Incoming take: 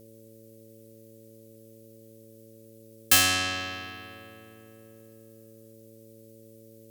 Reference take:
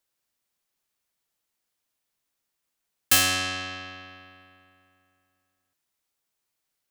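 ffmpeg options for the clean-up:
-af "bandreject=f=111.3:t=h:w=4,bandreject=f=222.6:t=h:w=4,bandreject=f=333.9:t=h:w=4,bandreject=f=445.2:t=h:w=4,bandreject=f=556.5:t=h:w=4,agate=range=-21dB:threshold=-44dB"

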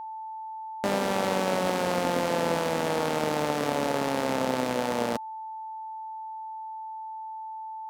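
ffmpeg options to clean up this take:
-af "bandreject=f=880:w=30"

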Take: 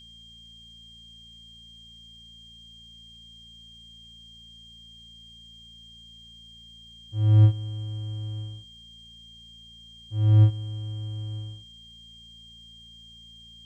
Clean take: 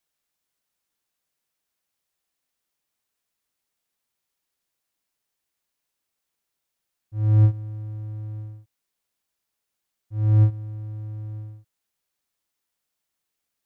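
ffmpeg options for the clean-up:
-af "bandreject=f=56.8:t=h:w=4,bandreject=f=113.6:t=h:w=4,bandreject=f=170.4:t=h:w=4,bandreject=f=227.2:t=h:w=4,bandreject=f=3.2k:w=30,agate=range=-21dB:threshold=-41dB"

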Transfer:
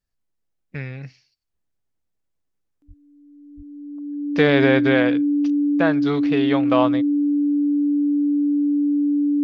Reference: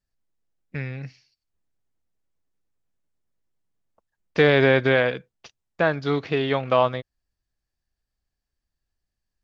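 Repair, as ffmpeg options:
-filter_complex "[0:a]bandreject=f=290:w=30,asplit=3[a][b][c];[a]afade=t=out:st=2.87:d=0.02[d];[b]highpass=f=140:w=0.5412,highpass=f=140:w=1.3066,afade=t=in:st=2.87:d=0.02,afade=t=out:st=2.99:d=0.02[e];[c]afade=t=in:st=2.99:d=0.02[f];[d][e][f]amix=inputs=3:normalize=0,asplit=3[g][h][i];[g]afade=t=out:st=3.56:d=0.02[j];[h]highpass=f=140:w=0.5412,highpass=f=140:w=1.3066,afade=t=in:st=3.56:d=0.02,afade=t=out:st=3.68:d=0.02[k];[i]afade=t=in:st=3.68:d=0.02[l];[j][k][l]amix=inputs=3:normalize=0"

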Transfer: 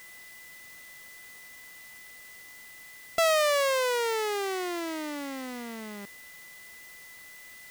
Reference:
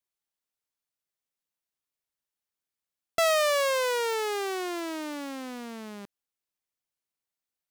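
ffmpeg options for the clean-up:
-af "bandreject=f=2k:w=30,afwtdn=0.0025"

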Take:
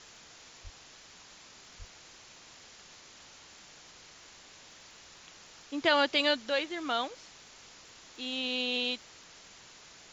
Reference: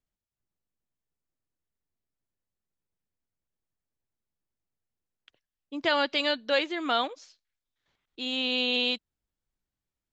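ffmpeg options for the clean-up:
-filter_complex "[0:a]adeclick=t=4,asplit=3[a][b][c];[a]afade=t=out:st=0.63:d=0.02[d];[b]highpass=f=140:w=0.5412,highpass=f=140:w=1.3066,afade=t=in:st=0.63:d=0.02,afade=t=out:st=0.75:d=0.02[e];[c]afade=t=in:st=0.75:d=0.02[f];[d][e][f]amix=inputs=3:normalize=0,asplit=3[g][h][i];[g]afade=t=out:st=1.78:d=0.02[j];[h]highpass=f=140:w=0.5412,highpass=f=140:w=1.3066,afade=t=in:st=1.78:d=0.02,afade=t=out:st=1.9:d=0.02[k];[i]afade=t=in:st=1.9:d=0.02[l];[j][k][l]amix=inputs=3:normalize=0,afwtdn=0.0035,asetnsamples=n=441:p=0,asendcmd='6.49 volume volume 5dB',volume=0dB"

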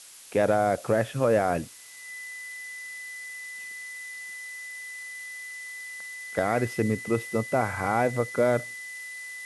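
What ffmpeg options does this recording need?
-af "bandreject=f=2k:w=30,afftdn=nr=30:nf=-40"

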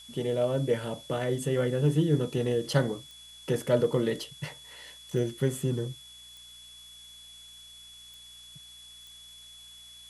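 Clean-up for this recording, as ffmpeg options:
-af "adeclick=t=4,bandreject=f=59.5:t=h:w=4,bandreject=f=119:t=h:w=4,bandreject=f=178.5:t=h:w=4,bandreject=f=238:t=h:w=4,bandreject=f=3.4k:w=30,afftdn=nr=24:nf=-50"

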